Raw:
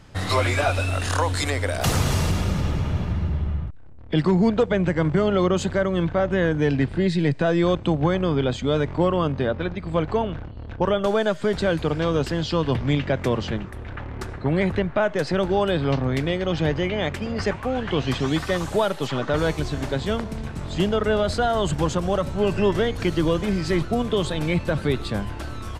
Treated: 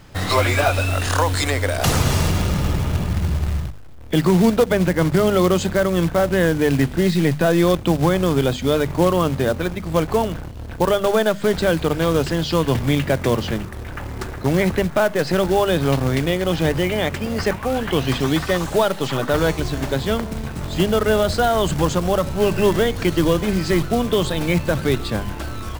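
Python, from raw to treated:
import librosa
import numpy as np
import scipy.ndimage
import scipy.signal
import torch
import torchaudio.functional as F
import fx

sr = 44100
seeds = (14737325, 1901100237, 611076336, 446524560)

y = fx.hum_notches(x, sr, base_hz=50, count=5)
y = fx.quant_float(y, sr, bits=2)
y = F.gain(torch.from_numpy(y), 4.0).numpy()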